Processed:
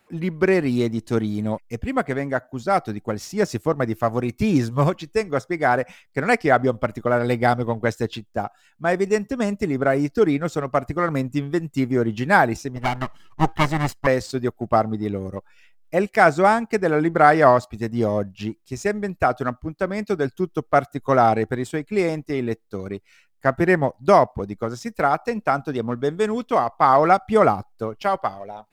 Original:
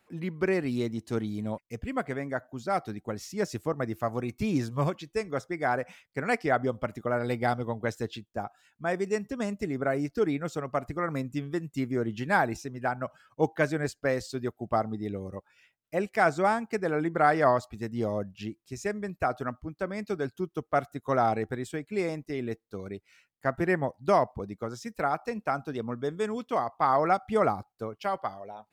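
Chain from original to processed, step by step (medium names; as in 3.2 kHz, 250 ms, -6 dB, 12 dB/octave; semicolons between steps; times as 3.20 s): 12.76–14.07 s: comb filter that takes the minimum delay 1 ms; in parallel at -6.5 dB: hysteresis with a dead band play -35 dBFS; on the sum: trim +5.5 dB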